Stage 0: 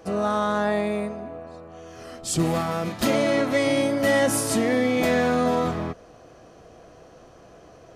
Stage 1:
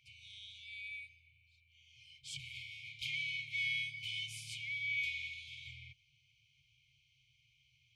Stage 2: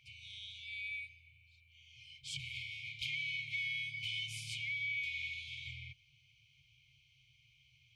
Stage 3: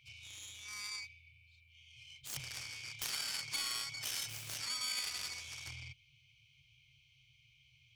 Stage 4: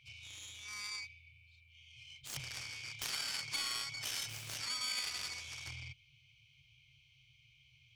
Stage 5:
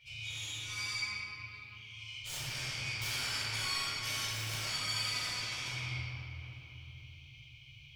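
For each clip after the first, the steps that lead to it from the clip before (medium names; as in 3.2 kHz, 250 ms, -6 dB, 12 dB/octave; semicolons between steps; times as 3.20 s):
FFT band-reject 140–2100 Hz; vowel filter i; trim +4.5 dB
treble shelf 5.3 kHz -6 dB; compression, threshold -41 dBFS, peak gain reduction 7 dB; trim +5 dB
self-modulated delay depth 0.36 ms; trim +1 dB
treble shelf 8.9 kHz -7 dB; trim +1.5 dB
compression 2:1, threshold -47 dBFS, peak gain reduction 7.5 dB; reverberation RT60 3.2 s, pre-delay 4 ms, DRR -10.5 dB; trim -2 dB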